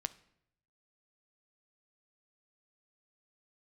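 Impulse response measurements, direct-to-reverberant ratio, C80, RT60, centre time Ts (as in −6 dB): 12.5 dB, 21.5 dB, 0.75 s, 3 ms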